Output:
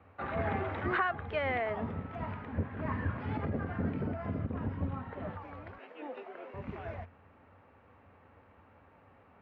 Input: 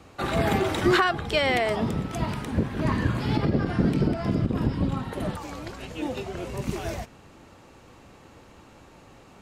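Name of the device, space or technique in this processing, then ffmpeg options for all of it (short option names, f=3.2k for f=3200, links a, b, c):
bass cabinet: -filter_complex "[0:a]highpass=86,equalizer=f=89:t=q:w=4:g=10,equalizer=f=130:t=q:w=4:g=-9,equalizer=f=190:t=q:w=4:g=-4,equalizer=f=340:t=q:w=4:g=-9,lowpass=f=2.1k:w=0.5412,lowpass=f=2.1k:w=1.3066,aemphasis=mode=production:type=50kf,asettb=1/sr,asplit=3[a][b][c];[a]atrim=end=5.784[d];[b]atrim=start=5.78:end=6.54,asetpts=PTS-STARTPTS,afade=t=in:d=0.004:c=qsin,afade=t=out:st=0.756:d=0.004:c=qsin,highpass=f=290:w=0.5412,highpass=f=290:w=1.3066[e];[c]atrim=start=6.536[f];[d][e]acrossfade=d=0.004:c1=hsin:c2=qsin[g];[g][f]acrossfade=d=0.004:c1=qsin:c2=hsin,volume=-8dB"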